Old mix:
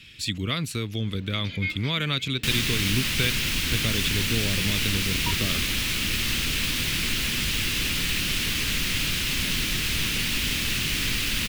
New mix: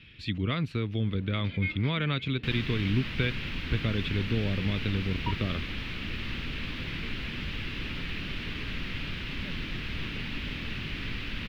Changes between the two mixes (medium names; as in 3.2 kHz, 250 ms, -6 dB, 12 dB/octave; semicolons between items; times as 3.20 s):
second sound -5.0 dB; master: add distance through air 360 m